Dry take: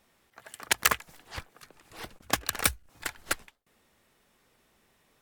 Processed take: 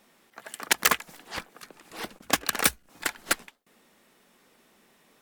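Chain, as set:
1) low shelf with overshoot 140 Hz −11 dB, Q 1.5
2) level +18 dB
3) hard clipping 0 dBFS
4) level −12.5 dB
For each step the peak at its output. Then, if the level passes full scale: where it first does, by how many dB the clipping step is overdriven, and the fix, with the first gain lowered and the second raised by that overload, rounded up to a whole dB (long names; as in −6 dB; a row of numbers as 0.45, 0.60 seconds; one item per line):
−10.5, +7.5, 0.0, −12.5 dBFS
step 2, 7.5 dB
step 2 +10 dB, step 4 −4.5 dB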